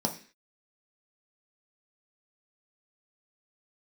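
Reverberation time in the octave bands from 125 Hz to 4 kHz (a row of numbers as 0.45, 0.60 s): 0.35 s, 0.45 s, 0.40 s, 0.40 s, 0.60 s, n/a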